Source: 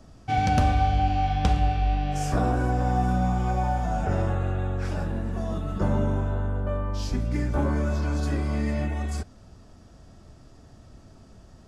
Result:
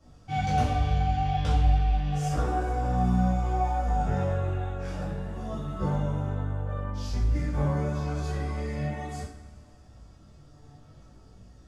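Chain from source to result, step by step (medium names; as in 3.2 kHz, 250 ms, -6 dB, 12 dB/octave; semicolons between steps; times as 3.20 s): chorus voices 4, 0.34 Hz, delay 17 ms, depth 3.5 ms; two-slope reverb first 0.48 s, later 2.4 s, from -18 dB, DRR -7 dB; trim -8.5 dB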